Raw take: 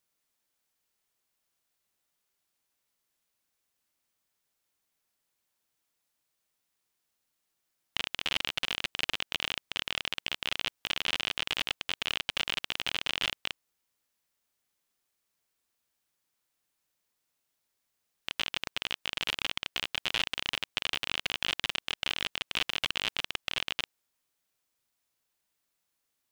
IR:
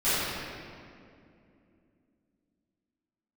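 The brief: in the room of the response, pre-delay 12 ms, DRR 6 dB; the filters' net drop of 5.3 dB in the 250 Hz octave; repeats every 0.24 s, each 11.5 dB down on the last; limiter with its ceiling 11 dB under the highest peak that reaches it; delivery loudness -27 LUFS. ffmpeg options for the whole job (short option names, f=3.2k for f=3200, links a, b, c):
-filter_complex "[0:a]equalizer=f=250:t=o:g=-7.5,alimiter=limit=-18.5dB:level=0:latency=1,aecho=1:1:240|480|720:0.266|0.0718|0.0194,asplit=2[a][b];[1:a]atrim=start_sample=2205,adelay=12[c];[b][c]afir=irnorm=-1:irlink=0,volume=-21dB[d];[a][d]amix=inputs=2:normalize=0,volume=9.5dB"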